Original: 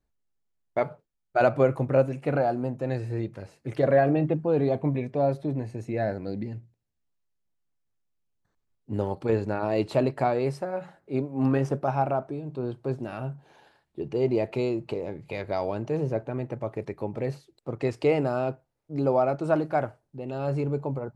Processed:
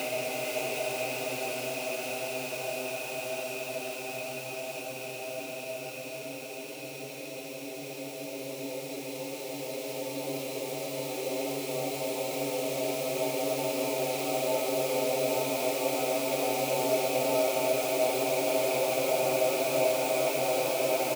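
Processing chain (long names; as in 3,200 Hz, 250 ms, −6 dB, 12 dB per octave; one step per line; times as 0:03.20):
one scale factor per block 5 bits
high shelf with overshoot 1,800 Hz +9.5 dB, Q 3
extreme stretch with random phases 26×, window 1.00 s, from 0:18.47
bass and treble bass −13 dB, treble +2 dB
on a send: single-tap delay 444 ms −5 dB
on the sum: steady tone 5,600 Hz −54 dBFS
level −3.5 dB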